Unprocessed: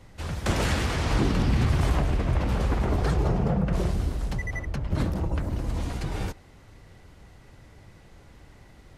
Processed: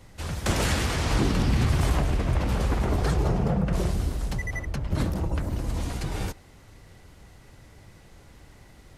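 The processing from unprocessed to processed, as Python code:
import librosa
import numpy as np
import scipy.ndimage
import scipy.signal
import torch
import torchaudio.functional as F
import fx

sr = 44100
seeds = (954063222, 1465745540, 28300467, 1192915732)

y = fx.high_shelf(x, sr, hz=5500.0, db=7.0)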